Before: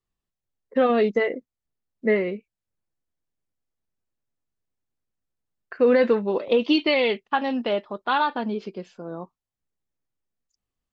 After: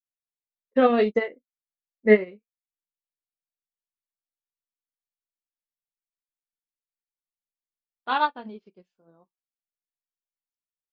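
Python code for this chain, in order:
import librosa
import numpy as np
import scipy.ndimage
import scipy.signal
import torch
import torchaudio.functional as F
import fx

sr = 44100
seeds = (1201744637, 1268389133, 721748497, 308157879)

y = fx.chorus_voices(x, sr, voices=2, hz=0.7, base_ms=24, depth_ms=4.9, mix_pct=25)
y = fx.spec_freeze(y, sr, seeds[0], at_s=5.42, hold_s=2.63)
y = fx.upward_expand(y, sr, threshold_db=-41.0, expansion=2.5)
y = y * librosa.db_to_amplitude(7.5)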